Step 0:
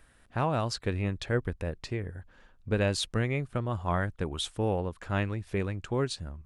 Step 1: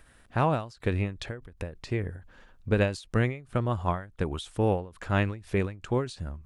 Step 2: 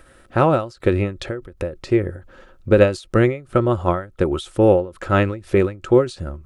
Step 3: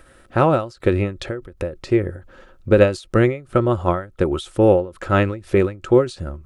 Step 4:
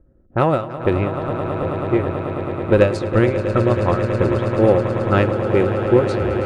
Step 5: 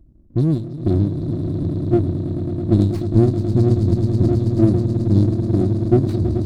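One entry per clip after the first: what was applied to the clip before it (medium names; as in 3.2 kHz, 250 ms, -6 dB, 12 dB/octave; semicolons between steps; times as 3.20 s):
endings held to a fixed fall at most 140 dB/s; trim +4 dB
small resonant body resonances 360/530/1300 Hz, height 12 dB, ringing for 50 ms; trim +6 dB
no audible change
Chebyshev shaper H 4 -27 dB, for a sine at -2 dBFS; level-controlled noise filter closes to 300 Hz, open at -11.5 dBFS; echo with a slow build-up 108 ms, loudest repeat 8, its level -12.5 dB; trim -1 dB
brick-wall FIR band-stop 370–3700 Hz; bass shelf 350 Hz +3.5 dB; sliding maximum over 17 samples; trim +2 dB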